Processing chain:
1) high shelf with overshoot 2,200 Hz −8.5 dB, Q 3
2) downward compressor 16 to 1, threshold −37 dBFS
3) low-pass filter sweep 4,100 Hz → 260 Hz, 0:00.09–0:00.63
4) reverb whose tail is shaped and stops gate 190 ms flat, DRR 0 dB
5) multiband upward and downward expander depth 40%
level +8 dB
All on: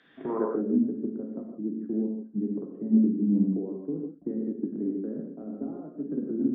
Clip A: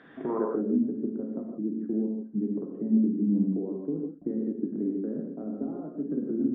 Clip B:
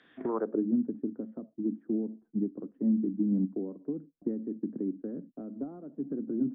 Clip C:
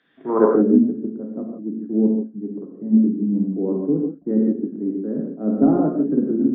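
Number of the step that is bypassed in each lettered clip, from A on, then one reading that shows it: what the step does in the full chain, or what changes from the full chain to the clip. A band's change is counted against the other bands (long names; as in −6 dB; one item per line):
5, change in crest factor −2.0 dB
4, change in momentary loudness spread −1 LU
2, average gain reduction 8.5 dB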